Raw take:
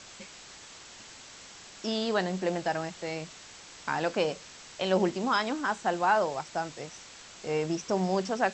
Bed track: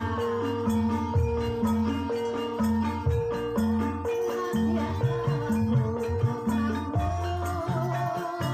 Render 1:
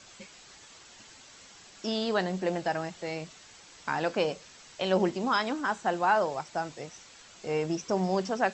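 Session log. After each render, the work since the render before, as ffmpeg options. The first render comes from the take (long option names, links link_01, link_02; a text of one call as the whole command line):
ffmpeg -i in.wav -af "afftdn=noise_reduction=6:noise_floor=-49" out.wav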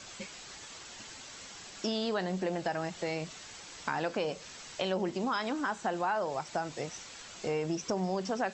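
ffmpeg -i in.wav -filter_complex "[0:a]asplit=2[link_01][link_02];[link_02]alimiter=level_in=0.5dB:limit=-24dB:level=0:latency=1:release=27,volume=-0.5dB,volume=-3dB[link_03];[link_01][link_03]amix=inputs=2:normalize=0,acompressor=threshold=-31dB:ratio=3" out.wav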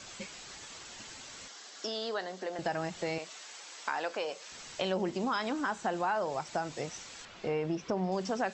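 ffmpeg -i in.wav -filter_complex "[0:a]asettb=1/sr,asplit=3[link_01][link_02][link_03];[link_01]atrim=end=1.484[link_04];[link_02]atrim=start=1.48:end=2.59,asetpts=PTS-STARTPTS,afade=type=in:duration=0.004:curve=qsin,afade=type=out:start_time=1.106:duration=0.004:curve=qsin,highpass=frequency=300:width=0.5412,highpass=frequency=300:width=1.3066,equalizer=frequency=350:width_type=q:width=4:gain=-7,equalizer=frequency=560:width_type=q:width=4:gain=-3,equalizer=frequency=910:width_type=q:width=4:gain=-4,equalizer=frequency=2500:width_type=q:width=4:gain=-7,lowpass=frequency=7300:width=0.5412,lowpass=frequency=7300:width=1.3066[link_05];[link_03]atrim=start=2.586[link_06];[link_04][link_05]acrossfade=duration=0.004:curve1=hsin:curve2=qsin[link_07];[link_07][link_06]acrossfade=duration=0.004:curve1=qsin:curve2=hsin,asettb=1/sr,asplit=3[link_08][link_09][link_10];[link_08]atrim=end=3.184[link_11];[link_09]atrim=start=3.18:end=4.52,asetpts=PTS-STARTPTS,afade=type=in:duration=0.004:curve=qsin,afade=type=out:start_time=1.336:duration=0.004:curve=qsin,highpass=480[link_12];[link_10]atrim=start=4.516[link_13];[link_11][link_12]acrossfade=duration=0.004:curve1=hsin:curve2=qsin[link_14];[link_14][link_13]acrossfade=duration=0.004:curve1=qsin:curve2=hsin,asettb=1/sr,asplit=3[link_15][link_16][link_17];[link_15]atrim=end=7.254[link_18];[link_16]atrim=start=7.25:end=8.12,asetpts=PTS-STARTPTS,afade=type=in:duration=0.004:curve=qsin,afade=type=out:start_time=0.866:duration=0.004:curve=qsin,lowpass=3400[link_19];[link_17]atrim=start=8.116[link_20];[link_18][link_19]acrossfade=duration=0.004:curve1=hsin:curve2=qsin[link_21];[link_21][link_20]acrossfade=duration=0.004:curve1=qsin:curve2=hsin" out.wav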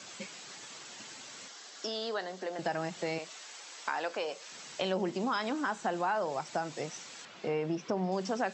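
ffmpeg -i in.wav -af "highpass=frequency=130:width=0.5412,highpass=frequency=130:width=1.3066" out.wav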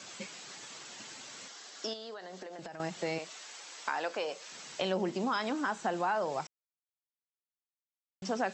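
ffmpeg -i in.wav -filter_complex "[0:a]asettb=1/sr,asplit=3[link_01][link_02][link_03];[link_01]atrim=end=1.934[link_04];[link_02]atrim=start=1.93:end=2.8,asetpts=PTS-STARTPTS,afade=type=in:duration=0.004:curve=qsin,afade=type=out:start_time=0.866:duration=0.004:curve=qsin,acompressor=threshold=-40dB:ratio=12:attack=3.2:release=140:knee=1:detection=peak[link_05];[link_03]atrim=start=2.796[link_06];[link_04][link_05]acrossfade=duration=0.004:curve1=hsin:curve2=qsin[link_07];[link_07][link_06]acrossfade=duration=0.004:curve1=qsin:curve2=hsin,asplit=3[link_08][link_09][link_10];[link_08]atrim=end=6.47,asetpts=PTS-STARTPTS,afade=type=out:start_time=6.466:duration=0.004:curve=hsin[link_11];[link_09]atrim=start=6.47:end=8.22,asetpts=PTS-STARTPTS,volume=0[link_12];[link_10]atrim=start=8.22,asetpts=PTS-STARTPTS,afade=type=in:duration=0.004:curve=hsin[link_13];[link_11][link_12][link_13]concat=n=3:v=0:a=1" out.wav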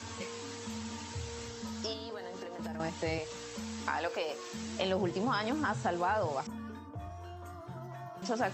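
ffmpeg -i in.wav -i bed.wav -filter_complex "[1:a]volume=-16.5dB[link_01];[0:a][link_01]amix=inputs=2:normalize=0" out.wav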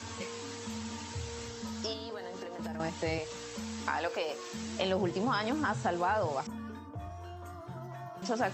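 ffmpeg -i in.wav -af "volume=1dB" out.wav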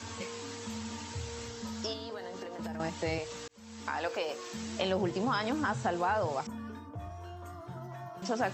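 ffmpeg -i in.wav -filter_complex "[0:a]asplit=2[link_01][link_02];[link_01]atrim=end=3.48,asetpts=PTS-STARTPTS,afade=type=out:start_time=3.476:duration=0.004:curve=hsin[link_03];[link_02]atrim=start=3.48,asetpts=PTS-STARTPTS,afade=type=in:duration=0.59[link_04];[link_03][link_04]concat=n=2:v=0:a=1" out.wav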